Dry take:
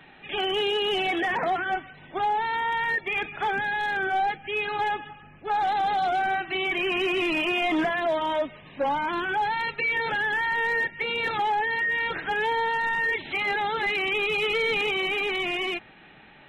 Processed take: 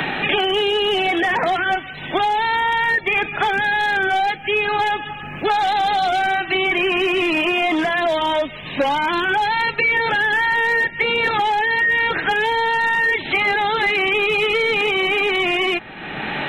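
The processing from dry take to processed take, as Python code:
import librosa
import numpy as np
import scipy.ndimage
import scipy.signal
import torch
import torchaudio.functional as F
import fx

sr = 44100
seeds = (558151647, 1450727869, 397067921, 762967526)

y = fx.band_squash(x, sr, depth_pct=100)
y = y * 10.0 ** (6.5 / 20.0)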